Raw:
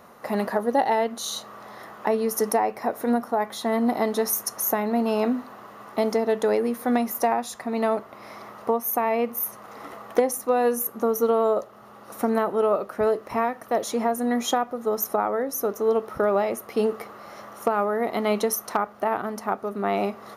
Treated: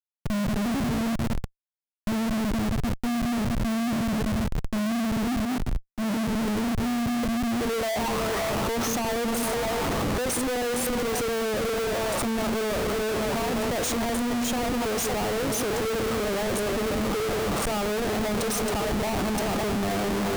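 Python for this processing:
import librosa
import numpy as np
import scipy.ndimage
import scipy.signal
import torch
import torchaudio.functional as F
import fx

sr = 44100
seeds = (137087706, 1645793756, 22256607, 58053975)

p1 = x + fx.echo_stepped(x, sr, ms=187, hz=260.0, octaves=0.7, feedback_pct=70, wet_db=-4.5, dry=0)
p2 = fx.filter_sweep_lowpass(p1, sr, from_hz=150.0, to_hz=8300.0, start_s=7.24, end_s=9.05, q=6.1)
p3 = fx.over_compress(p2, sr, threshold_db=-32.0, ratio=-1.0)
p4 = p2 + (p3 * librosa.db_to_amplitude(3.0))
p5 = fx.schmitt(p4, sr, flips_db=-27.5)
p6 = fx.low_shelf(p5, sr, hz=210.0, db=4.0)
p7 = fx.band_widen(p6, sr, depth_pct=100, at=(5.45, 6.3))
y = p7 * librosa.db_to_amplitude(-6.0)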